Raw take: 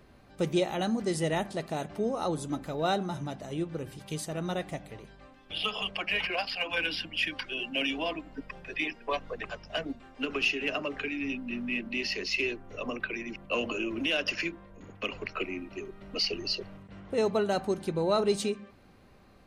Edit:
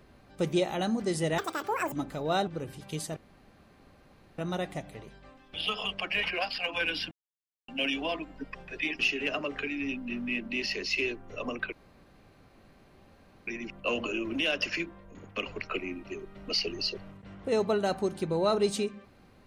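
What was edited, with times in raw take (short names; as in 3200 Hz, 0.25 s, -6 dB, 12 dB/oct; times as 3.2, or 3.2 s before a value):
1.38–2.46 speed 199%
3.01–3.66 cut
4.35 insert room tone 1.22 s
7.08–7.65 mute
8.96–10.4 cut
13.13 insert room tone 1.75 s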